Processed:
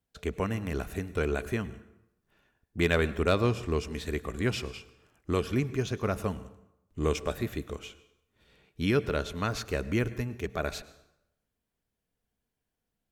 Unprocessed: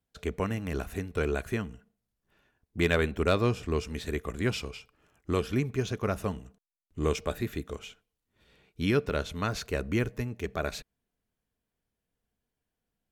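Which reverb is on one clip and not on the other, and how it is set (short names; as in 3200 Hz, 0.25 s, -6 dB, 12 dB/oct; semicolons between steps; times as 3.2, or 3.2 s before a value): plate-style reverb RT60 0.85 s, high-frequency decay 0.75×, pre-delay 90 ms, DRR 16.5 dB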